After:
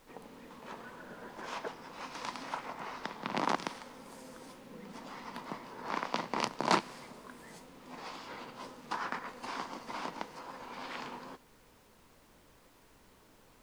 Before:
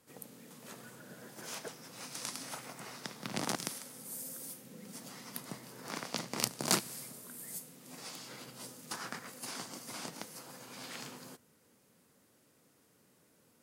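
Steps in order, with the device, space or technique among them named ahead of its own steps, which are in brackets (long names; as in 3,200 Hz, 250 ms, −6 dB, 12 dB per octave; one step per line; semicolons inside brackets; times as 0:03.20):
horn gramophone (band-pass filter 210–3,100 Hz; parametric band 970 Hz +8.5 dB 0.47 octaves; tape wow and flutter; pink noise bed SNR 23 dB)
level +4 dB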